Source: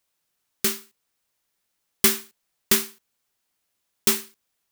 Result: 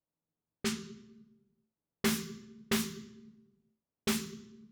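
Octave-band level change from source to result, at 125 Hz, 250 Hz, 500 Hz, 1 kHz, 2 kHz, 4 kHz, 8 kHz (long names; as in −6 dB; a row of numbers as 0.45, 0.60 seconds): −1.0, −1.5, −7.0, −7.0, −8.5, −10.5, −14.0 decibels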